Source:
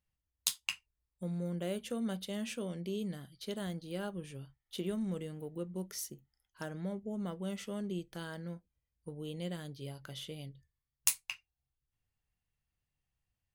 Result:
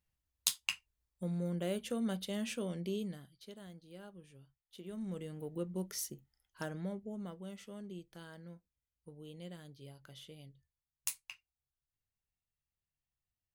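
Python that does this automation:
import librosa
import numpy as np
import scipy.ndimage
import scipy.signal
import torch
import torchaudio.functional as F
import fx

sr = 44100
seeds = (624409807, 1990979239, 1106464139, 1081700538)

y = fx.gain(x, sr, db=fx.line((2.92, 0.5), (3.56, -12.5), (4.83, -12.5), (5.0, -5.5), (5.53, 1.0), (6.64, 1.0), (7.53, -8.5)))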